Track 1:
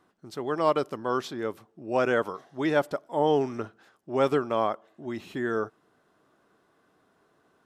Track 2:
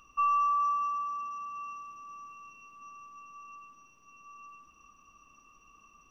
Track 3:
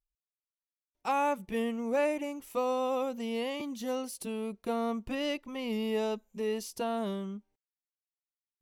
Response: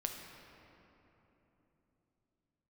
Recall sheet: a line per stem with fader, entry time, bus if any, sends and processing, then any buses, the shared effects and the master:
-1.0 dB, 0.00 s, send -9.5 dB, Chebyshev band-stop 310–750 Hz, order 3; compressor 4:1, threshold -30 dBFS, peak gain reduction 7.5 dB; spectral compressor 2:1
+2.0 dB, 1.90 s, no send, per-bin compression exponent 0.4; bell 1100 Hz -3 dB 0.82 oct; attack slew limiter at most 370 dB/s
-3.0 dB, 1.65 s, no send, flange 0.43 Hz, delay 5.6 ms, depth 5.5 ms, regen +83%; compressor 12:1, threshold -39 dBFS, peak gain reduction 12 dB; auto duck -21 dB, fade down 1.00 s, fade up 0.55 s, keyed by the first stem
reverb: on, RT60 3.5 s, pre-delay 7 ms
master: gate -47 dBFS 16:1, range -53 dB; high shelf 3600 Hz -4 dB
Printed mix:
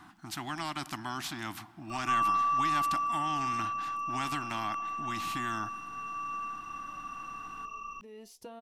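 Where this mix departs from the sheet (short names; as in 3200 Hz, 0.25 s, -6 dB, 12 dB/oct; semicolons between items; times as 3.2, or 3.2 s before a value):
stem 1: send -9.5 dB -> -15.5 dB; master: missing gate -47 dBFS 16:1, range -53 dB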